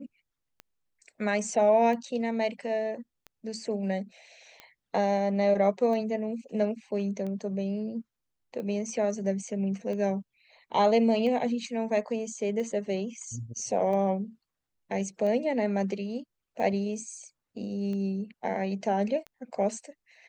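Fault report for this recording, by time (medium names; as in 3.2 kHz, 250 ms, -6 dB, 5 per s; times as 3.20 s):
tick 45 rpm -27 dBFS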